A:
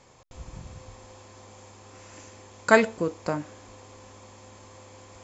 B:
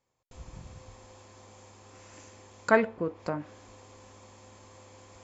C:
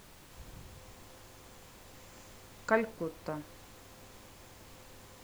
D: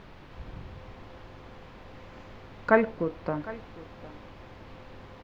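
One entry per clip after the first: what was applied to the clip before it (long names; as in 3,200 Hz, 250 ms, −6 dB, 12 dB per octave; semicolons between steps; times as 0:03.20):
treble cut that deepens with the level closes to 2,100 Hz, closed at −24 dBFS; noise gate with hold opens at −42 dBFS; level −4 dB
background noise pink −49 dBFS; level −6 dB
high-frequency loss of the air 310 metres; single-tap delay 756 ms −18 dB; level +8.5 dB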